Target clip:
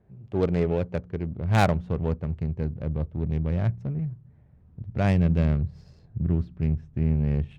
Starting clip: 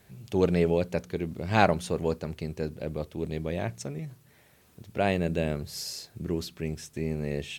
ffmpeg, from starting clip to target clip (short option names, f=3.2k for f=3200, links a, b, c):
-af "asubboost=boost=7:cutoff=150,adynamicsmooth=sensitivity=2:basefreq=750"